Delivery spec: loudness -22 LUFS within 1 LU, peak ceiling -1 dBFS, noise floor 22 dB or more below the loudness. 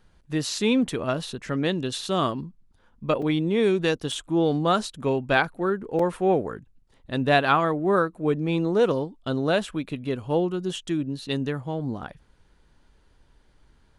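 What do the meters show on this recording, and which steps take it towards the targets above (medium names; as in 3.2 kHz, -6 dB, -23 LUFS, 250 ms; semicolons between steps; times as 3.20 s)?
dropouts 3; longest dropout 4.0 ms; loudness -25.0 LUFS; peak level -6.5 dBFS; loudness target -22.0 LUFS
-> interpolate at 3.22/4.12/5.99 s, 4 ms; trim +3 dB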